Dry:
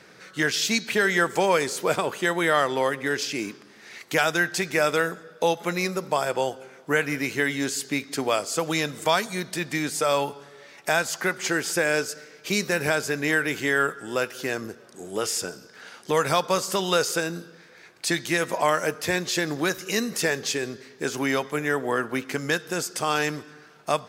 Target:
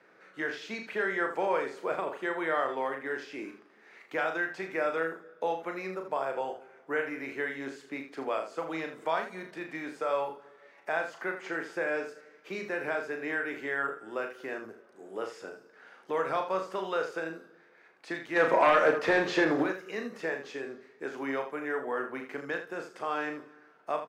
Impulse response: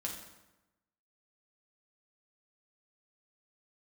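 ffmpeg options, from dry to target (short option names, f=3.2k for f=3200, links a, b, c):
-filter_complex "[0:a]asplit=3[a][b][c];[a]afade=t=out:st=18.35:d=0.02[d];[b]aeval=exprs='0.398*sin(PI/2*2.82*val(0)/0.398)':c=same,afade=t=in:st=18.35:d=0.02,afade=t=out:st=19.62:d=0.02[e];[c]afade=t=in:st=19.62:d=0.02[f];[d][e][f]amix=inputs=3:normalize=0,acrossover=split=250 2300:gain=0.158 1 0.141[g][h][i];[g][h][i]amix=inputs=3:normalize=0,acrossover=split=6000[j][k];[k]acompressor=threshold=-58dB:ratio=4:attack=1:release=60[l];[j][l]amix=inputs=2:normalize=0,aecho=1:1:37|80:0.501|0.335,volume=-8dB"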